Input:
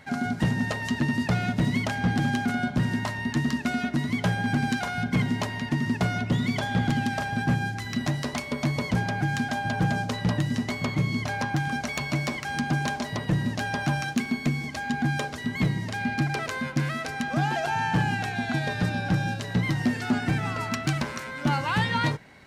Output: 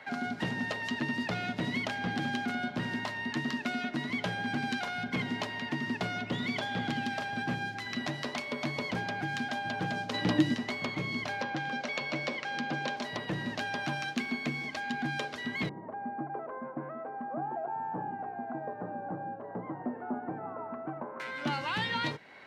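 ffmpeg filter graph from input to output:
-filter_complex "[0:a]asettb=1/sr,asplit=3[a][b][c];[a]atrim=end=10.144[d];[b]atrim=start=10.14:end=10.54,asetpts=PTS-STARTPTS,afade=t=in:d=0.004:c=qsin,afade=t=out:st=0.396:d=0.004:c=qsin,equalizer=f=300:w=7.3:g=14.5,acontrast=33[e];[c]atrim=start=10.536[f];[d][e]acrossfade=d=0.004:c1=hsin:c2=qsin[g];[g][f]acrossfade=d=0.004:c1=qsin:c2=hsin,asettb=1/sr,asplit=3[h][i][j];[h]atrim=end=11.414[k];[i]atrim=start=11.41:end=12.97,asetpts=PTS-STARTPTS,afade=t=in:d=0.004:c=qsin,afade=t=out:st=1.556:d=0.004:c=qsin,highpass=130,lowpass=6k,equalizer=f=520:w=7.8:g=13[l];[j]atrim=start=12.966[m];[k][l]acrossfade=d=0.004:c1=hsin:c2=qsin[n];[n][m]acrossfade=d=0.004:c1=qsin:c2=hsin,asettb=1/sr,asplit=3[o][p][q];[o]atrim=end=15.694[r];[p]atrim=start=15.69:end=21.2,asetpts=PTS-STARTPTS,afade=t=in:d=0.004:c=qsin,afade=t=out:st=5.506:d=0.004:c=qsin,lowpass=f=1k:w=0.5412,lowpass=f=1k:w=1.3066,equalizer=f=79:w=0.61:g=-13[s];[q]atrim=start=21.196[t];[r][s]acrossfade=d=0.004:c1=hsin:c2=qsin[u];[u][t]acrossfade=d=0.004:c1=qsin:c2=hsin,highpass=f=180:p=1,acrossover=split=330 4100:gain=0.224 1 0.158[v][w][x];[v][w][x]amix=inputs=3:normalize=0,acrossover=split=340|3000[y][z][aa];[z]acompressor=threshold=-45dB:ratio=2[ab];[y][ab][aa]amix=inputs=3:normalize=0,volume=3dB"

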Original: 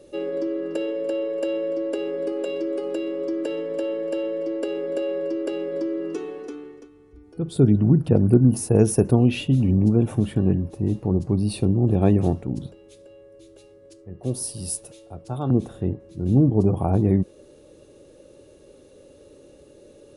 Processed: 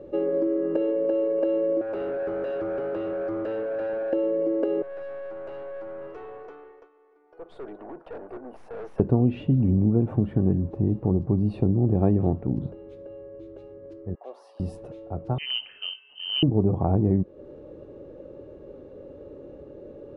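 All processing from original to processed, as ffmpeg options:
-filter_complex "[0:a]asettb=1/sr,asplit=3[a][b][c];[a]atrim=end=1.814[d];[b]atrim=start=1.81:end=4.13,asetpts=PTS-STARTPTS,afade=t=in:d=0.004:c=qsin,afade=t=out:st=2.316:d=0.004:c=qsin,highpass=470,asoftclip=type=hard:threshold=-33dB[e];[c]atrim=start=4.126[f];[d][e]acrossfade=d=0.004:c1=hsin:c2=qsin[g];[g][f]acrossfade=d=0.004:c1=qsin:c2=hsin,asettb=1/sr,asplit=3[h][i][j];[h]atrim=end=4.824[k];[i]atrim=start=4.82:end=9,asetpts=PTS-STARTPTS,afade=t=in:d=0.004:c=qsin,afade=t=out:st=4.176:d=0.004:c=qsin,highpass=f=580:w=0.5412,highpass=f=580:w=1.3066,aeval=exprs='(tanh(112*val(0)+0.4)-tanh(0.4))/112':c=same[l];[j]atrim=start=8.996[m];[k][l]acrossfade=d=0.004:c1=hsin:c2=qsin[n];[n][m]acrossfade=d=0.004:c1=qsin:c2=hsin,asettb=1/sr,asplit=3[o][p][q];[o]atrim=end=14.154[r];[p]atrim=start=14.15:end=14.6,asetpts=PTS-STARTPTS,afade=t=in:d=0.004:c=qsin,afade=t=out:st=0.446:d=0.004:c=qsin,highpass=f=720:w=0.5412,highpass=f=720:w=1.3066,aemphasis=mode=reproduction:type=50kf[s];[q]atrim=start=14.596[t];[r][s]acrossfade=d=0.004:c1=hsin:c2=qsin[u];[u][t]acrossfade=d=0.004:c1=qsin:c2=hsin,asettb=1/sr,asplit=3[v][w][x];[v]atrim=end=15.384[y];[w]atrim=start=15.38:end=16.43,asetpts=PTS-STARTPTS,afade=t=in:d=0.004:c=qsin,afade=t=out:st=1.046:d=0.004:c=qsin,acrusher=bits=8:mode=log:mix=0:aa=0.000001,lowpass=f=2.7k:t=q:w=0.5098,lowpass=f=2.7k:t=q:w=0.6013,lowpass=f=2.7k:t=q:w=0.9,lowpass=f=2.7k:t=q:w=2.563,afreqshift=-3200[z];[x]atrim=start=16.426[aa];[y][z]acrossfade=d=0.004:c1=hsin:c2=qsin[ab];[ab][aa]acrossfade=d=0.004:c1=qsin:c2=hsin,lowpass=1.2k,acompressor=threshold=-31dB:ratio=2,volume=6.5dB"

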